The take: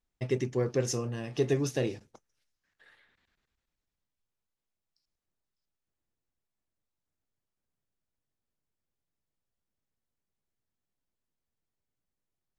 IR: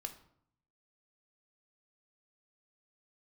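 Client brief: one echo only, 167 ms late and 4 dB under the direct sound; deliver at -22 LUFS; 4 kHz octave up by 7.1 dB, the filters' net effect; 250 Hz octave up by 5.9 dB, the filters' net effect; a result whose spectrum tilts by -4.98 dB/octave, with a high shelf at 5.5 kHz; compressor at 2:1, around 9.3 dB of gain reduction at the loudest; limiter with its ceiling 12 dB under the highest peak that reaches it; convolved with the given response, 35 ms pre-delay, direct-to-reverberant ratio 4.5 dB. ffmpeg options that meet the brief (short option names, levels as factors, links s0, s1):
-filter_complex "[0:a]equalizer=f=250:t=o:g=7.5,equalizer=f=4000:t=o:g=8,highshelf=f=5500:g=4,acompressor=threshold=0.0141:ratio=2,alimiter=level_in=2.82:limit=0.0631:level=0:latency=1,volume=0.355,aecho=1:1:167:0.631,asplit=2[s0][s1];[1:a]atrim=start_sample=2205,adelay=35[s2];[s1][s2]afir=irnorm=-1:irlink=0,volume=0.794[s3];[s0][s3]amix=inputs=2:normalize=0,volume=8.91"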